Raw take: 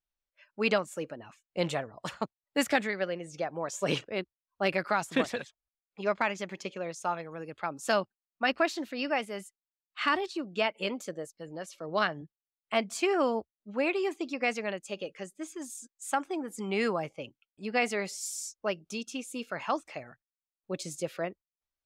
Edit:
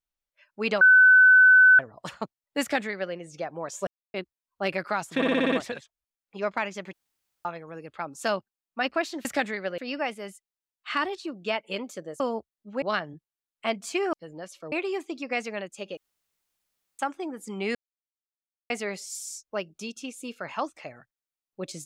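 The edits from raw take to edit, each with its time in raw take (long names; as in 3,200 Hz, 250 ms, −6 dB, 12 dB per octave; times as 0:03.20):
0:00.81–0:01.79: beep over 1,510 Hz −11.5 dBFS
0:02.61–0:03.14: duplicate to 0:08.89
0:03.87–0:04.14: silence
0:05.16: stutter 0.06 s, 7 plays
0:06.57–0:07.09: fill with room tone
0:11.31–0:11.90: swap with 0:13.21–0:13.83
0:15.08–0:16.10: fill with room tone
0:16.86–0:17.81: silence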